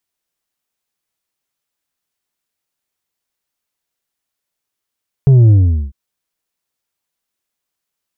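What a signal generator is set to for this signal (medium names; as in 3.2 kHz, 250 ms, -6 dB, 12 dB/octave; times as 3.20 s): sub drop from 140 Hz, over 0.65 s, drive 5 dB, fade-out 0.42 s, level -5 dB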